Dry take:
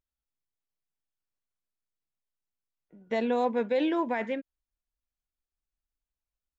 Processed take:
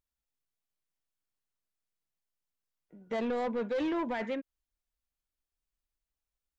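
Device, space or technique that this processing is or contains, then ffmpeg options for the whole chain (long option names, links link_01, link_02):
saturation between pre-emphasis and de-emphasis: -af "highshelf=frequency=3600:gain=8,asoftclip=type=tanh:threshold=-27.5dB,highshelf=frequency=3600:gain=-8"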